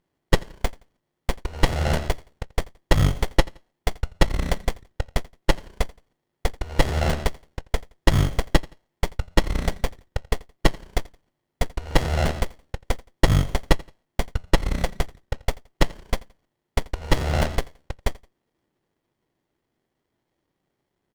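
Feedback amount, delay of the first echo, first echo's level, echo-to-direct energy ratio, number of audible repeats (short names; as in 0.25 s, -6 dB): 30%, 85 ms, -23.0 dB, -22.5 dB, 2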